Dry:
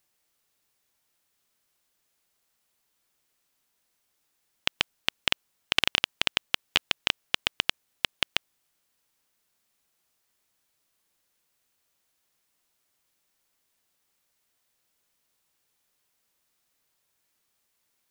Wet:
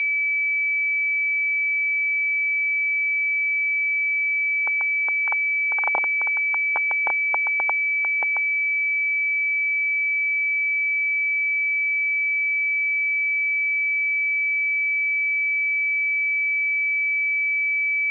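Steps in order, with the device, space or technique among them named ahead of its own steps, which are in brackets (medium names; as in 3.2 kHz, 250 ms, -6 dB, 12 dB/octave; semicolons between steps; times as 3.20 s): toy sound module (decimation joined by straight lines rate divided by 4×; class-D stage that switches slowly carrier 2.3 kHz; cabinet simulation 780–3500 Hz, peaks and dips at 840 Hz +9 dB, 1.3 kHz -6 dB, 1.9 kHz -7 dB, 3 kHz -3 dB); trim +6.5 dB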